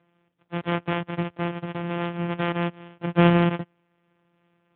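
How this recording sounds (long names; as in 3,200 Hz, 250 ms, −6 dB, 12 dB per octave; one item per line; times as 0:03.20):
a buzz of ramps at a fixed pitch in blocks of 256 samples
AMR narrowband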